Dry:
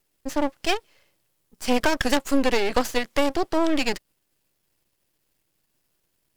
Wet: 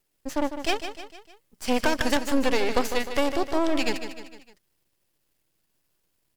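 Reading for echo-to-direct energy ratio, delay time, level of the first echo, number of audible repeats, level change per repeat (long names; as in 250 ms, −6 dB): −8.5 dB, 152 ms, −9.5 dB, 4, −6.0 dB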